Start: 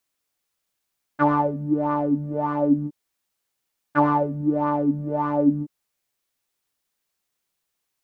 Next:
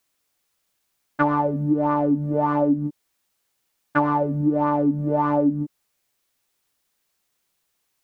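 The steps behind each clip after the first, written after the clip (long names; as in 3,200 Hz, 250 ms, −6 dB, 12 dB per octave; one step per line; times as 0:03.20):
downward compressor 6 to 1, threshold −22 dBFS, peak gain reduction 9 dB
level +5.5 dB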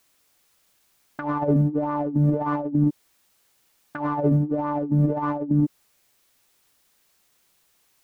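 compressor whose output falls as the input rises −25 dBFS, ratio −0.5
level +3.5 dB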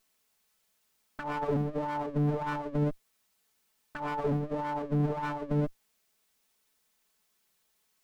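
lower of the sound and its delayed copy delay 4.6 ms
level −7 dB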